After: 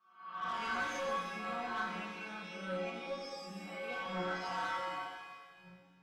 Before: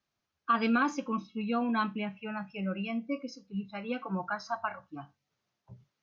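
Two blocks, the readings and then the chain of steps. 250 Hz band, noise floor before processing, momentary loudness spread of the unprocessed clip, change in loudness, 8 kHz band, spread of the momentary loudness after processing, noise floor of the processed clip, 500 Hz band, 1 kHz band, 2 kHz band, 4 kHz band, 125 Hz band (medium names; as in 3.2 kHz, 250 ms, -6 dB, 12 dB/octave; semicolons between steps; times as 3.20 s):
-14.5 dB, -85 dBFS, 11 LU, -6.5 dB, no reading, 12 LU, -64 dBFS, -3.0 dB, -4.0 dB, -2.5 dB, 0.0 dB, -8.5 dB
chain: reverse spectral sustain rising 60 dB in 0.65 s; dynamic bell 2.4 kHz, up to -5 dB, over -46 dBFS, Q 1.3; inharmonic resonator 180 Hz, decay 0.5 s, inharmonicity 0.002; overdrive pedal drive 20 dB, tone 2.3 kHz, clips at -32 dBFS; pitch-shifted reverb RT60 1.5 s, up +7 st, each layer -8 dB, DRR 0 dB; trim +1 dB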